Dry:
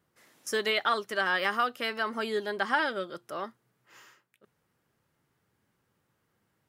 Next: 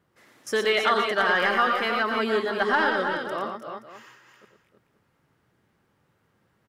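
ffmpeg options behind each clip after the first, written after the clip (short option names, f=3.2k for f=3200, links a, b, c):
-filter_complex "[0:a]asoftclip=type=tanh:threshold=-16dB,highshelf=f=5.3k:g=-10,asplit=2[a][b];[b]aecho=0:1:90|116|306|330|525:0.355|0.501|0.299|0.422|0.168[c];[a][c]amix=inputs=2:normalize=0,volume=5.5dB"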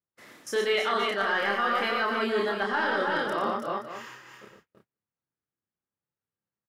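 -filter_complex "[0:a]agate=range=-34dB:threshold=-59dB:ratio=16:detection=peak,areverse,acompressor=threshold=-30dB:ratio=6,areverse,asplit=2[a][b];[b]adelay=30,volume=-3.5dB[c];[a][c]amix=inputs=2:normalize=0,volume=4.5dB"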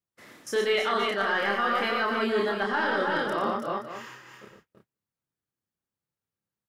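-af "lowshelf=f=250:g=4"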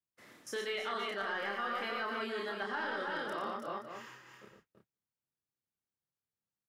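-filter_complex "[0:a]acrossover=split=200|1200[a][b][c];[a]acompressor=threshold=-52dB:ratio=4[d];[b]acompressor=threshold=-31dB:ratio=4[e];[c]acompressor=threshold=-30dB:ratio=4[f];[d][e][f]amix=inputs=3:normalize=0,volume=-7.5dB"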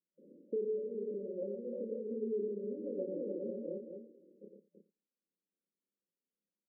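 -filter_complex "[0:a]afftfilt=real='re*between(b*sr/4096,170,590)':imag='im*between(b*sr/4096,170,590)':win_size=4096:overlap=0.75,asplit=2[a][b];[b]adelay=87.46,volume=-17dB,highshelf=f=4k:g=-1.97[c];[a][c]amix=inputs=2:normalize=0,volume=4.5dB"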